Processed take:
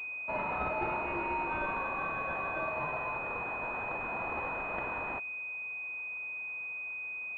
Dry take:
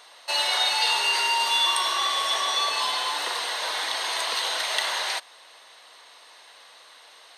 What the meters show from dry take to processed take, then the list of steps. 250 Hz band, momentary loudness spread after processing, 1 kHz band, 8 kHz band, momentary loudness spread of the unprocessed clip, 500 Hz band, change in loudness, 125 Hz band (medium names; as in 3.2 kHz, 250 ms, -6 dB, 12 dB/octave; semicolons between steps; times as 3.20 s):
+8.5 dB, 4 LU, -7.5 dB, under -40 dB, 6 LU, -1.5 dB, -11.5 dB, no reading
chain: class-D stage that switches slowly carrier 2.5 kHz; trim -6.5 dB